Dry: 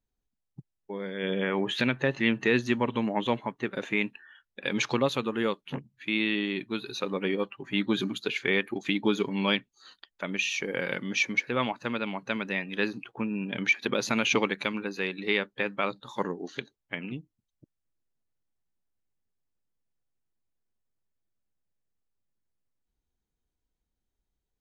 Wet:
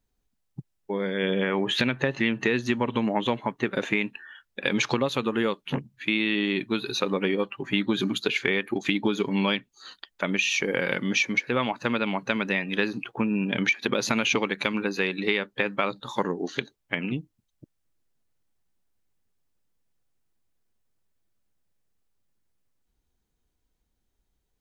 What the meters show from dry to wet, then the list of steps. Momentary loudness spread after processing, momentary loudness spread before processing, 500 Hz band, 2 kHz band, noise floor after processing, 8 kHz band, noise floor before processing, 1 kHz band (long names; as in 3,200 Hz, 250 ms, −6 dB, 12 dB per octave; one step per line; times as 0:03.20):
8 LU, 10 LU, +2.5 dB, +2.5 dB, −76 dBFS, can't be measured, −84 dBFS, +3.0 dB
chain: downward compressor, threshold −28 dBFS, peak gain reduction 9.5 dB
level +7.5 dB